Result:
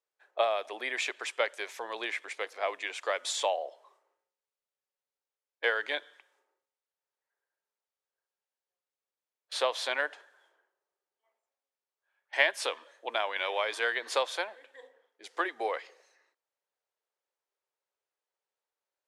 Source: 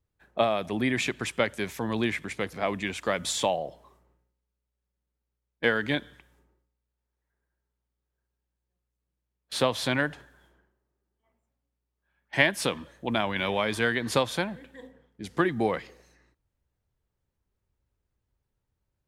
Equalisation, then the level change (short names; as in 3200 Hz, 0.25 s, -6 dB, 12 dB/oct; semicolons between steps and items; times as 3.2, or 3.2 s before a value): inverse Chebyshev high-pass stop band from 180 Hz, stop band 50 dB; LPF 8700 Hz 12 dB/oct; -2.5 dB